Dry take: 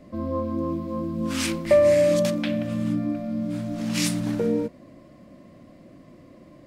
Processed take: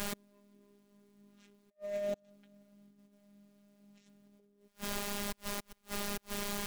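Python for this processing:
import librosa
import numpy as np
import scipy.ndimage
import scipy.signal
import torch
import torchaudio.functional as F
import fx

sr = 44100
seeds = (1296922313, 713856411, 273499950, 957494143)

y = fx.wiener(x, sr, points=25)
y = fx.cabinet(y, sr, low_hz=150.0, low_slope=12, high_hz=6800.0, hz=(170.0, 550.0, 1100.0, 2300.0, 4800.0), db=(-5, -4, -9, -4, -10))
y = fx.dmg_noise_colour(y, sr, seeds[0], colour='pink', level_db=-45.0)
y = fx.low_shelf(y, sr, hz=390.0, db=-3.0)
y = fx.over_compress(y, sr, threshold_db=-30.0, ratio=-0.5)
y = fx.gate_flip(y, sr, shuts_db=-31.0, range_db=-39)
y = fx.robotise(y, sr, hz=203.0)
y = y * librosa.db_to_amplitude(8.0)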